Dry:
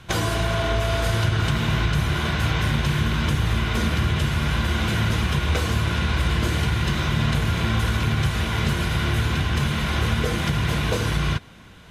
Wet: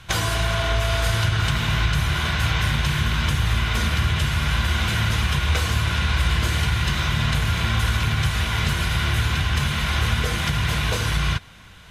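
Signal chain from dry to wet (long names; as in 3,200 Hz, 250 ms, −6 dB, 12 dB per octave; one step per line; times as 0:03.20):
parametric band 310 Hz −10 dB 2.3 octaves
level +3.5 dB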